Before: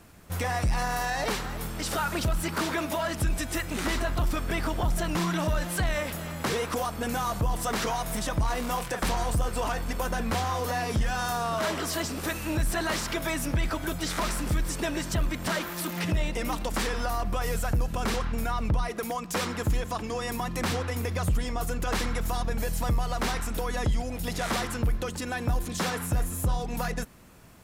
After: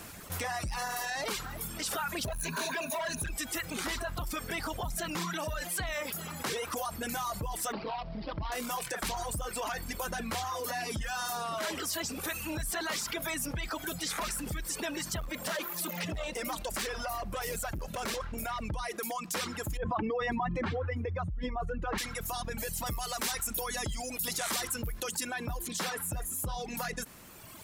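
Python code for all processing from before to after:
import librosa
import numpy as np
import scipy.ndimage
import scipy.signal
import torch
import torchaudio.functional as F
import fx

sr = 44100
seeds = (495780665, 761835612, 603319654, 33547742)

y = fx.chain(x, sr, fx.ripple_eq(per_octave=1.5, db=14),
    fx.clip_hard(threshold_db=-24.0), at=(2.25, 3.3))
y = fx.chain(y, sr, fx.median_filter(points=25),
    fx.hum_notches(base_hz=60, count=8),
    fx.resample_bad(factor=4, down='none', up='filtered'), at=(7.72, 8.52))
y = fx.chain(y, sr, fx.peak_eq(hz=580.0, db=9.0, octaves=0.3),
    fx.clip_hard(threshold_db=-24.5), at=(15.2, 18.6))
y = fx.chain(y, sr, fx.spec_expand(power=1.5),
    fx.lowpass(hz=2400.0, slope=12),
    fx.env_flatten(amount_pct=100), at=(19.77, 21.98))
y = fx.chain(y, sr, fx.high_shelf(hz=5400.0, db=10.5),
    fx.quant_float(bits=6), at=(22.86, 25.27))
y = fx.dereverb_blind(y, sr, rt60_s=1.4)
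y = fx.tilt_eq(y, sr, slope=1.5)
y = fx.env_flatten(y, sr, amount_pct=50)
y = y * librosa.db_to_amplitude(-8.5)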